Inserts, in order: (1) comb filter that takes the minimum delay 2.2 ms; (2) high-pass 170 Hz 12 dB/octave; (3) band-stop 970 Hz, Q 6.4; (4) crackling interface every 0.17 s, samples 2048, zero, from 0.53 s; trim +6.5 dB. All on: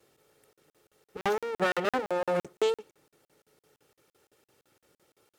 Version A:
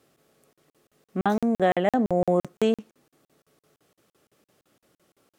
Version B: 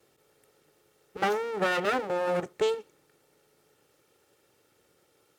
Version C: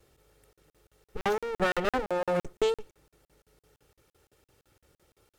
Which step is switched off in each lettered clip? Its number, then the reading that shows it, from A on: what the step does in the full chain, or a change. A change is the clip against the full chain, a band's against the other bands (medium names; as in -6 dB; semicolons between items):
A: 1, 250 Hz band +9.5 dB; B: 4, momentary loudness spread change -2 LU; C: 2, 125 Hz band +3.0 dB